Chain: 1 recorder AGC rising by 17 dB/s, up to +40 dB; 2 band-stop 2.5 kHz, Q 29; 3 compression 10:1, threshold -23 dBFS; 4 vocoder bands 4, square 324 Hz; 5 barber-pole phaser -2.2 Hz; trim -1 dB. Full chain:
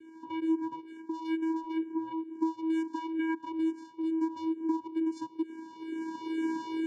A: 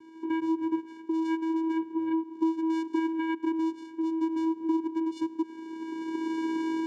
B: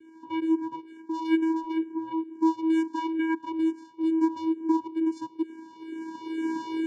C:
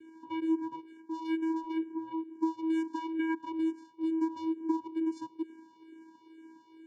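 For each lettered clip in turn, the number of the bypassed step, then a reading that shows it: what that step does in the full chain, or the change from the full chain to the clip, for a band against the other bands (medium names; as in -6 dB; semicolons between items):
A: 5, loudness change +3.5 LU; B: 3, mean gain reduction 3.5 dB; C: 1, momentary loudness spread change +3 LU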